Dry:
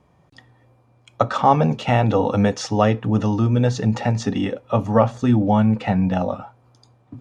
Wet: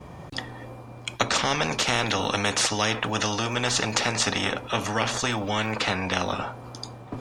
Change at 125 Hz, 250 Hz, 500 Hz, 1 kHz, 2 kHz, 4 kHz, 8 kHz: -12.5 dB, -11.5 dB, -8.0 dB, -5.5 dB, +6.0 dB, +10.0 dB, no reading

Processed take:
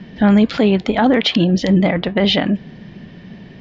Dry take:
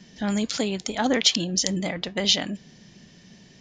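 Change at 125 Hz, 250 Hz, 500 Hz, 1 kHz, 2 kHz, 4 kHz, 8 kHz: +14.0 dB, +13.0 dB, +11.5 dB, +10.0 dB, +8.0 dB, +2.5 dB, under -10 dB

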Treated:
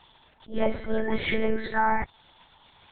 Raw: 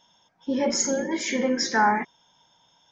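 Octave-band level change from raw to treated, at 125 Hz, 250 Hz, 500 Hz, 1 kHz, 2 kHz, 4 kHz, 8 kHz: +4.0 dB, -4.5 dB, -1.5 dB, -3.0 dB, -2.5 dB, -8.0 dB, no reading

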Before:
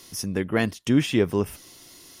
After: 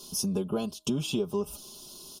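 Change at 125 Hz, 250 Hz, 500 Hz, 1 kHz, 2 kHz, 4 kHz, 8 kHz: -7.5 dB, -7.5 dB, -6.0 dB, -6.5 dB, -16.5 dB, -2.5 dB, +1.0 dB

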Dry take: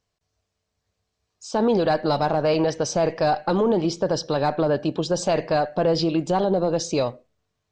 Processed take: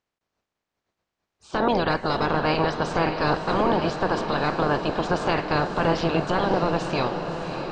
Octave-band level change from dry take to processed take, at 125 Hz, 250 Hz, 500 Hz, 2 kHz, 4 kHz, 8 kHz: 0.0 dB, -2.0 dB, -3.5 dB, +6.5 dB, 0.0 dB, -12.0 dB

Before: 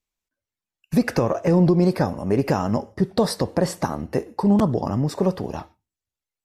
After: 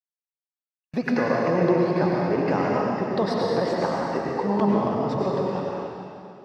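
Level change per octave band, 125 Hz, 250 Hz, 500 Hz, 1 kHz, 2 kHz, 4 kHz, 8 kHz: -6.5 dB, -3.5 dB, +0.5 dB, +2.5 dB, +2.5 dB, -3.0 dB, under -10 dB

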